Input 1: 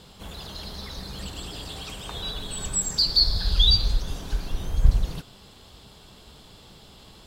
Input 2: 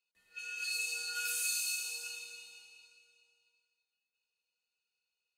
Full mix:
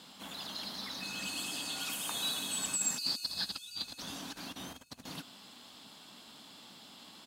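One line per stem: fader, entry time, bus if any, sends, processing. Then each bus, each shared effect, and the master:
-6.0 dB, 0.00 s, no send, no echo send, compressor with a negative ratio -26 dBFS, ratio -0.5; high-pass 510 Hz 12 dB/octave
-5.5 dB, 0.65 s, no send, echo send -9.5 dB, tilt EQ +3.5 dB/octave; compression, threshold -34 dBFS, peak gain reduction 12 dB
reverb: none
echo: feedback delay 977 ms, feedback 23%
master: resonant low shelf 330 Hz +7.5 dB, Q 3

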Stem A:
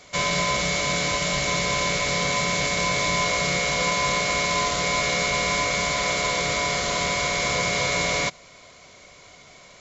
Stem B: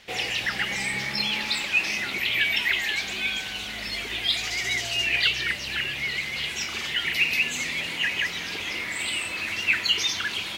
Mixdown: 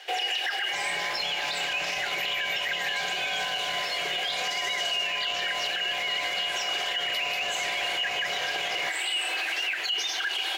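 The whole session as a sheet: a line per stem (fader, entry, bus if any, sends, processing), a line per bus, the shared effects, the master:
+1.5 dB, 0.60 s, no send, tone controls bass -12 dB, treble -5 dB; compression 3:1, threshold -36 dBFS, peak gain reduction 11.5 dB
+2.5 dB, 0.00 s, no send, steep high-pass 330 Hz 72 dB/octave; compression, threshold -26 dBFS, peak gain reduction 9 dB; modulation noise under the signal 33 dB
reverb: none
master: small resonant body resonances 760/1600/2900 Hz, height 14 dB, ringing for 45 ms; peak limiter -20.5 dBFS, peak gain reduction 13 dB

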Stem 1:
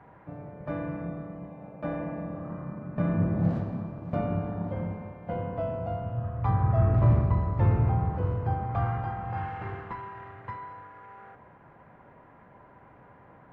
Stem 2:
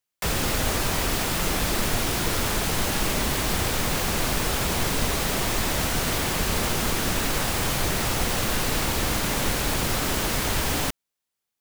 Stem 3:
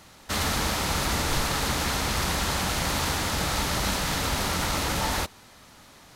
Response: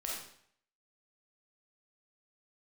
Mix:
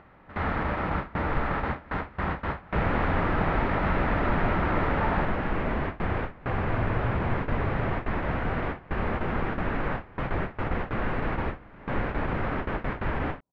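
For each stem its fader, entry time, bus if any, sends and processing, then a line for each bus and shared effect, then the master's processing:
-10.0 dB, 0.00 s, no send, local Wiener filter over 25 samples
-1.5 dB, 2.50 s, no send, none
-3.5 dB, 0.00 s, send -3.5 dB, none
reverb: on, RT60 0.65 s, pre-delay 5 ms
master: gate with hold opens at -15 dBFS; low-pass 2 kHz 24 dB/octave; upward compressor, threshold -38 dBFS

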